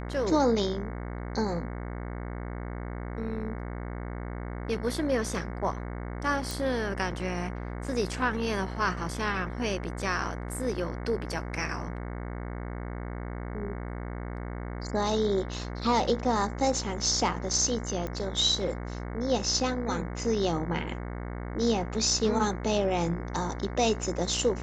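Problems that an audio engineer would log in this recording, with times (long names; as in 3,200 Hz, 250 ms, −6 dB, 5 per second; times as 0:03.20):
mains buzz 60 Hz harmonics 37 −36 dBFS
0:06.51: click
0:18.07: click −21 dBFS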